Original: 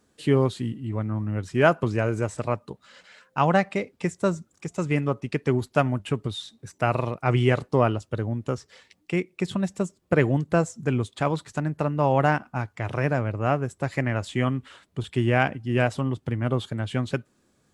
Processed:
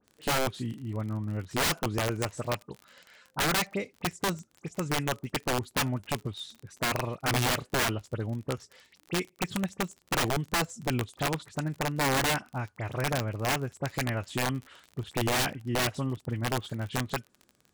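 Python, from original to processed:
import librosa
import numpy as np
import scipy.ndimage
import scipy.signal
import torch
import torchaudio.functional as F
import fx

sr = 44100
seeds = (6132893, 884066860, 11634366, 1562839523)

y = fx.dispersion(x, sr, late='highs', ms=47.0, hz=2900.0)
y = fx.dmg_crackle(y, sr, seeds[0], per_s=43.0, level_db=-32.0)
y = (np.mod(10.0 ** (16.0 / 20.0) * y + 1.0, 2.0) - 1.0) / 10.0 ** (16.0 / 20.0)
y = F.gain(torch.from_numpy(y), -5.0).numpy()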